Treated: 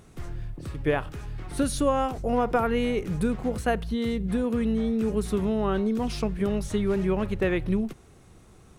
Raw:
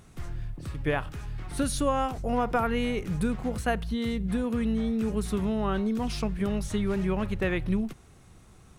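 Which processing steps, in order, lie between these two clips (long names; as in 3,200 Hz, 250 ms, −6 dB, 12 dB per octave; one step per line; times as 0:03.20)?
parametric band 410 Hz +5 dB 1.3 octaves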